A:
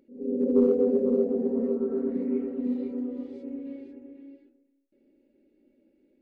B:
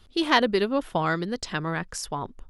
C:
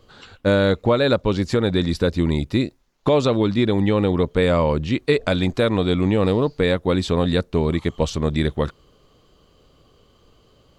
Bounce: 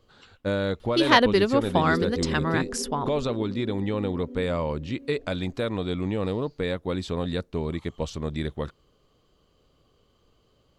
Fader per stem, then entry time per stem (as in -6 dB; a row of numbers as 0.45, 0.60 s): -9.5, +2.5, -9.0 dB; 1.35, 0.80, 0.00 s